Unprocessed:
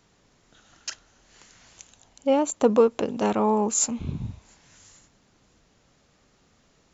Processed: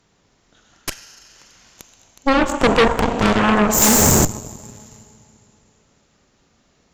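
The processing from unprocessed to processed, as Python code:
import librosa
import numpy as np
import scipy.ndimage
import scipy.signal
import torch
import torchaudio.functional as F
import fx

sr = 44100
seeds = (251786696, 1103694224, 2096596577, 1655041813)

y = fx.lowpass(x, sr, hz=fx.line((2.29, 3400.0), (2.75, 6000.0)), slope=12, at=(2.29, 2.75), fade=0.02)
y = fx.rev_schroeder(y, sr, rt60_s=2.9, comb_ms=32, drr_db=4.5)
y = fx.leveller(y, sr, passes=3, at=(3.82, 4.25))
y = fx.dynamic_eq(y, sr, hz=2200.0, q=2.2, threshold_db=-49.0, ratio=4.0, max_db=5)
y = fx.cheby_harmonics(y, sr, harmonics=(8,), levels_db=(-7,), full_scale_db=-6.5)
y = y * librosa.db_to_amplitude(1.0)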